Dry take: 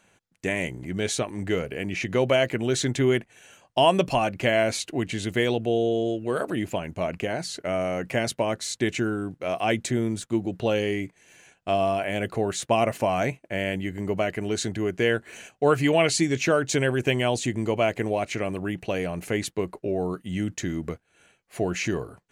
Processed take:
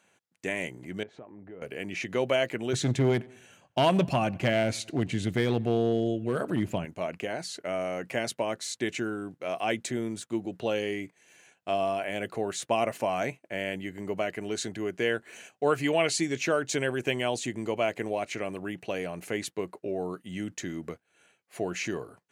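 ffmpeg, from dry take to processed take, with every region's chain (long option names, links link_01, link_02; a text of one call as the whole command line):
ffmpeg -i in.wav -filter_complex "[0:a]asettb=1/sr,asplit=3[link_01][link_02][link_03];[link_01]atrim=end=1.034[link_04];[link_02]atrim=start=1.03:end=1.62,asetpts=PTS-STARTPTS,afade=type=in:duration=0.004:curve=qsin,afade=type=out:start_time=0.586:duration=0.004:curve=qsin,lowpass=1100,acompressor=threshold=-38dB:ratio=4:attack=3.2:release=140:knee=1:detection=peak[link_05];[link_03]atrim=start=1.616[link_06];[link_04][link_05]acrossfade=duration=0.004:curve1=hsin:curve2=qsin[link_07];[link_07][link_06]acrossfade=duration=0.004:curve1=qsin:curve2=hsin,asettb=1/sr,asplit=3[link_08][link_09][link_10];[link_08]atrim=end=2.734[link_11];[link_09]atrim=start=2.73:end=6.85,asetpts=PTS-STARTPTS,afade=type=in:duration=0.004:curve=qsin,afade=type=out:start_time=4.116:duration=0.004:curve=qsin,bass=frequency=250:gain=14,treble=frequency=4000:gain=-2,aeval=exprs='clip(val(0),-1,0.224)':channel_layout=same,asplit=2[link_12][link_13];[link_13]adelay=91,lowpass=frequency=4700:poles=1,volume=-23.5dB,asplit=2[link_14][link_15];[link_15]adelay=91,lowpass=frequency=4700:poles=1,volume=0.53,asplit=2[link_16][link_17];[link_17]adelay=91,lowpass=frequency=4700:poles=1,volume=0.53[link_18];[link_12][link_14][link_16][link_18]amix=inputs=4:normalize=0,atrim=end_sample=181692[link_19];[link_10]atrim=start=6.846[link_20];[link_11][link_19]acrossfade=duration=0.004:curve1=hsin:curve2=qsin[link_21];[link_21][link_20]acrossfade=duration=0.004:curve1=qsin:curve2=hsin,highpass=75,lowshelf=frequency=120:gain=-12,volume=-4dB" out.wav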